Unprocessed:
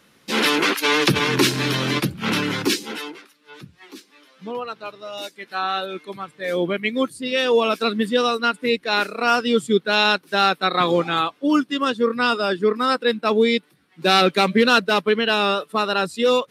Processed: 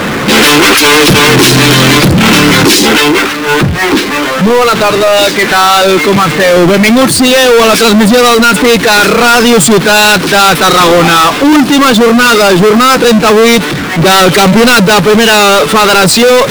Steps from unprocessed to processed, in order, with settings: saturation -18.5 dBFS, distortion -9 dB; level-controlled noise filter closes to 1.9 kHz, open at -20 dBFS; power-law waveshaper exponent 0.35; loudness maximiser +21 dB; trim -1 dB

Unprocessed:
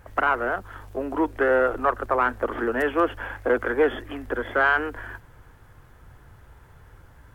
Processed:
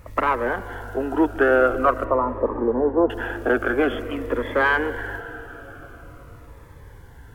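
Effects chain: 2.04–3.10 s: steep low-pass 1.1 kHz 48 dB/octave; reverberation RT60 4.9 s, pre-delay 97 ms, DRR 13.5 dB; Shepard-style phaser falling 0.47 Hz; trim +5.5 dB

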